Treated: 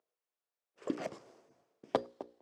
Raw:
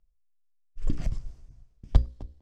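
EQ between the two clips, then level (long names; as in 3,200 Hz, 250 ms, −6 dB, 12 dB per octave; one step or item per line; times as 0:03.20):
four-pole ladder high-pass 340 Hz, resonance 30%
high-shelf EQ 2,400 Hz −12 dB
+14.5 dB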